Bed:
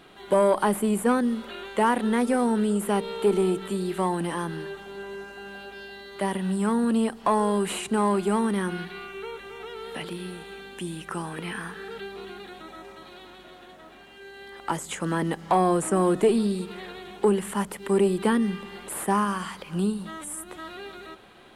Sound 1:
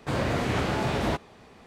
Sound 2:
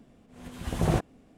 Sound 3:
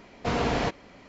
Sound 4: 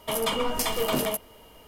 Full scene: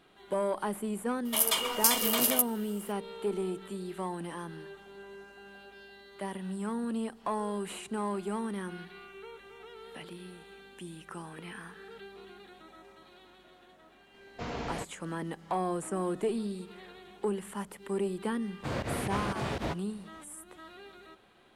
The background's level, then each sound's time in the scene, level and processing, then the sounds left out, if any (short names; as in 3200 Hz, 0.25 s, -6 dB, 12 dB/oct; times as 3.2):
bed -10.5 dB
1.25 add 4 -5.5 dB + tilt +3.5 dB/oct
14.14 add 3 -11 dB
18.57 add 1 -6.5 dB + pump 119 bpm, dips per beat 2, -21 dB, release 79 ms
not used: 2